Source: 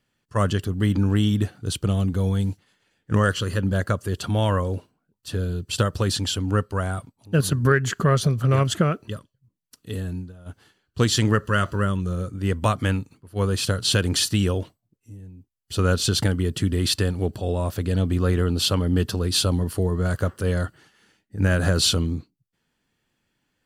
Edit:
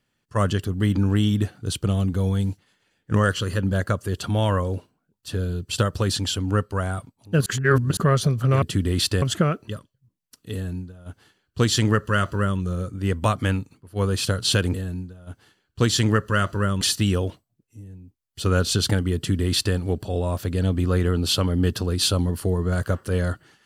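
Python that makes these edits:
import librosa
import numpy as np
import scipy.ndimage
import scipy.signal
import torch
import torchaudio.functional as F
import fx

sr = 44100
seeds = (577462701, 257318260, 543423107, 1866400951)

y = fx.edit(x, sr, fx.reverse_span(start_s=7.46, length_s=0.51),
    fx.duplicate(start_s=9.93, length_s=2.07, to_s=14.14),
    fx.duplicate(start_s=16.49, length_s=0.6, to_s=8.62), tone=tone)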